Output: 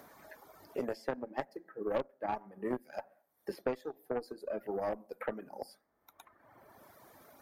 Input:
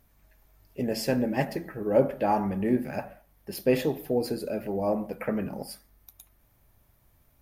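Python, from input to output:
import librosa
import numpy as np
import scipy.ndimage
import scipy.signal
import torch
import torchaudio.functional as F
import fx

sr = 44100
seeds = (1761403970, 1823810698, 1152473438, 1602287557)

y = fx.lowpass(x, sr, hz=3500.0, slope=6)
y = fx.peak_eq(y, sr, hz=2700.0, db=-10.5, octaves=0.63)
y = fx.cheby_harmonics(y, sr, harmonics=(5, 6, 7, 8), levels_db=(-31, -20, -22, -22), full_scale_db=-8.5)
y = scipy.signal.sosfilt(scipy.signal.butter(2, 360.0, 'highpass', fs=sr, output='sos'), y)
y = fx.tube_stage(y, sr, drive_db=13.0, bias=0.75)
y = fx.dereverb_blind(y, sr, rt60_s=1.2)
y = fx.band_squash(y, sr, depth_pct=100)
y = y * 10.0 ** (-2.0 / 20.0)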